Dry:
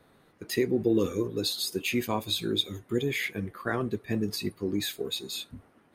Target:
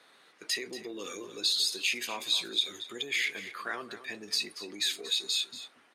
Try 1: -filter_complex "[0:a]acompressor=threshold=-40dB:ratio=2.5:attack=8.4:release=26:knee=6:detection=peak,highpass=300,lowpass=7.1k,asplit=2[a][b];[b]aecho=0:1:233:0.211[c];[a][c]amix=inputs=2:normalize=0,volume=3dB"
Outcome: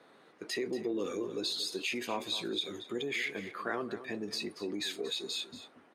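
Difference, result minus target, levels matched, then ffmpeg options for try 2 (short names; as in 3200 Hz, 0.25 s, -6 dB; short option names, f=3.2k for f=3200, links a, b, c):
1000 Hz band +6.0 dB
-filter_complex "[0:a]acompressor=threshold=-40dB:ratio=2.5:attack=8.4:release=26:knee=6:detection=peak,highpass=300,lowpass=7.1k,tiltshelf=f=1.2k:g=-9,asplit=2[a][b];[b]aecho=0:1:233:0.211[c];[a][c]amix=inputs=2:normalize=0,volume=3dB"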